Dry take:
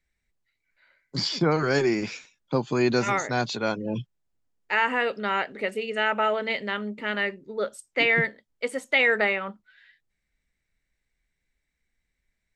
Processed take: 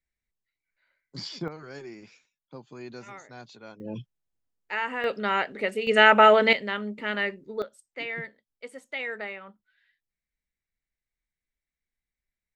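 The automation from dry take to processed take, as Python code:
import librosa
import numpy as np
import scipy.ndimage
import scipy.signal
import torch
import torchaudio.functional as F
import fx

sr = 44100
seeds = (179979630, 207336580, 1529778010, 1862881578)

y = fx.gain(x, sr, db=fx.steps((0.0, -10.0), (1.48, -19.0), (3.8, -6.5), (5.04, 0.5), (5.87, 8.5), (6.53, -1.0), (7.62, -12.5)))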